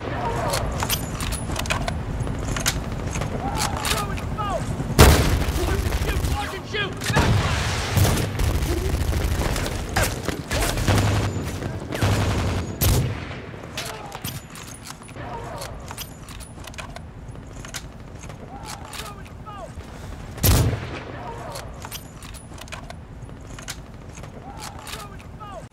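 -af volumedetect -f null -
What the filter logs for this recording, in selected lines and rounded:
mean_volume: -24.6 dB
max_volume: -1.4 dB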